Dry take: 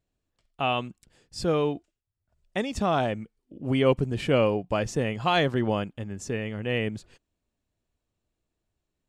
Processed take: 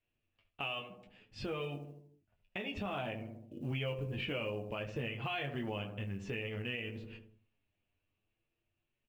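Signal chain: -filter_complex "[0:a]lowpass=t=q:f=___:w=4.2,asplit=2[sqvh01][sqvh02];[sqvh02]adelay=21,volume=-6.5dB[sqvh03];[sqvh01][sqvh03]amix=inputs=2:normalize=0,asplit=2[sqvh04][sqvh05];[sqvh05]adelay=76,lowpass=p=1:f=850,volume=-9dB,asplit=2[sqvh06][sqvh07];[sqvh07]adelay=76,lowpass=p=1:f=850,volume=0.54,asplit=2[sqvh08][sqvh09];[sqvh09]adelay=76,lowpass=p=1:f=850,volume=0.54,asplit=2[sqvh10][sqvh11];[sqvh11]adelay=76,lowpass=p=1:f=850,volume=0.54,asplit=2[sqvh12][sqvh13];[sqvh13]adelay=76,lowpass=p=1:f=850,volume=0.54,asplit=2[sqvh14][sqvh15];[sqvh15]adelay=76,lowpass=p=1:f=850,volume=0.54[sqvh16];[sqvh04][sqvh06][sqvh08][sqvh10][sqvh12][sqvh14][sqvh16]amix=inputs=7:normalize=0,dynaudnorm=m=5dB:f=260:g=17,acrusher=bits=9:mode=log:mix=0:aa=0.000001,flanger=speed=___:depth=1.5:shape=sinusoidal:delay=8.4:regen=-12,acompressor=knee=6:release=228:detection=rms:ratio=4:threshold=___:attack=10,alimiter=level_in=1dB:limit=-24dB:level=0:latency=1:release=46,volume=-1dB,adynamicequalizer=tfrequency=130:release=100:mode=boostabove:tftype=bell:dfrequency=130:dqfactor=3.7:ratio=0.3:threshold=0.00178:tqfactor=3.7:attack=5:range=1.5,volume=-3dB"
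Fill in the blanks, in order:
2700, 0.57, -34dB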